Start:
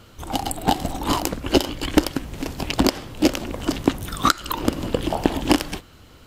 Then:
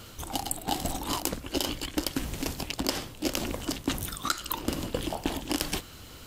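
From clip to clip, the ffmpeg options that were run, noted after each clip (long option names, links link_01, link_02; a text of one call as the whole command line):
ffmpeg -i in.wav -af "highshelf=frequency=3700:gain=9.5,areverse,acompressor=threshold=-27dB:ratio=6,areverse" out.wav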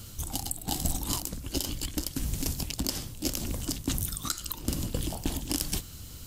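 ffmpeg -i in.wav -af "bass=frequency=250:gain=13,treble=frequency=4000:gain=13,alimiter=limit=-4dB:level=0:latency=1:release=200,volume=-7.5dB" out.wav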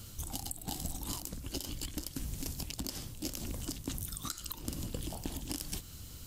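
ffmpeg -i in.wav -af "acompressor=threshold=-30dB:ratio=6,volume=-4dB" out.wav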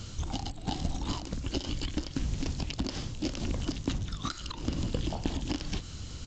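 ffmpeg -i in.wav -filter_complex "[0:a]acrossover=split=4500[link_01][link_02];[link_02]acompressor=threshold=-52dB:ratio=4:attack=1:release=60[link_03];[link_01][link_03]amix=inputs=2:normalize=0,aresample=16000,aresample=44100,volume=8dB" out.wav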